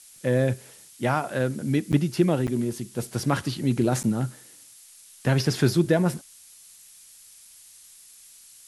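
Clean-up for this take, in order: de-click; interpolate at 1.92/2.47/4.03 s, 8.5 ms; noise print and reduce 20 dB

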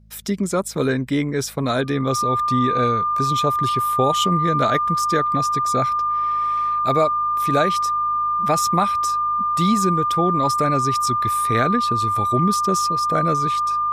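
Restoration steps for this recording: de-hum 53.4 Hz, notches 4; band-stop 1.2 kHz, Q 30

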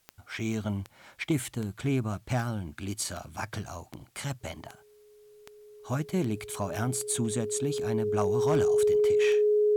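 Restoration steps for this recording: clip repair -18.5 dBFS; de-click; band-stop 420 Hz, Q 30; expander -49 dBFS, range -21 dB

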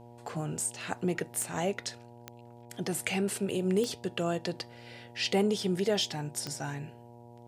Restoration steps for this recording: de-click; de-hum 119.1 Hz, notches 8

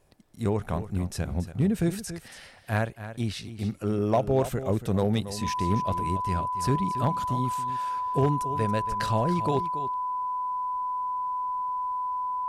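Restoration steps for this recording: clip repair -15.5 dBFS; band-stop 1 kHz, Q 30; inverse comb 280 ms -12.5 dB

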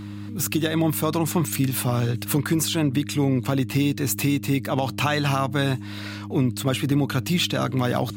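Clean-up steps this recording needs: clip repair -10 dBFS; de-hum 102.1 Hz, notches 3

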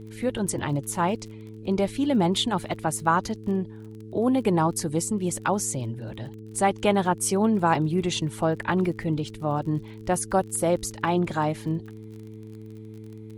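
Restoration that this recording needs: de-click; de-hum 108.9 Hz, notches 4

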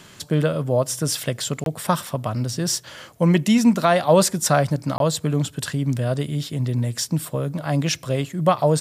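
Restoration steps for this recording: interpolate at 1.64/4.98 s, 22 ms

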